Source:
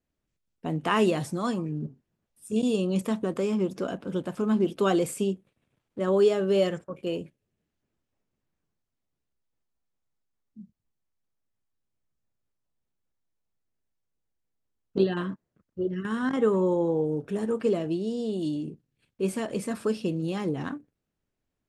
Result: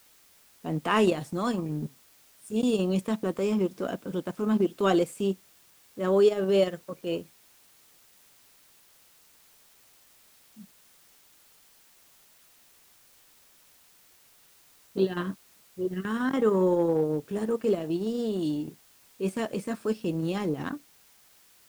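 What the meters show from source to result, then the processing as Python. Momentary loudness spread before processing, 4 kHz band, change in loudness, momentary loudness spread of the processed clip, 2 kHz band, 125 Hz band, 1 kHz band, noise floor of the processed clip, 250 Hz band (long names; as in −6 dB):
11 LU, 0.0 dB, 0.0 dB, 12 LU, 0.0 dB, −1.0 dB, +0.5 dB, −59 dBFS, −0.5 dB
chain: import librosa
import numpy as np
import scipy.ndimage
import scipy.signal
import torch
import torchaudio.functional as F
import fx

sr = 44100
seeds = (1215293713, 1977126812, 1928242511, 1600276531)

p1 = fx.low_shelf(x, sr, hz=64.0, db=-10.0)
p2 = fx.transient(p1, sr, attack_db=-6, sustain_db=-10)
p3 = fx.quant_dither(p2, sr, seeds[0], bits=8, dither='triangular')
y = p2 + (p3 * 10.0 ** (-11.0 / 20.0))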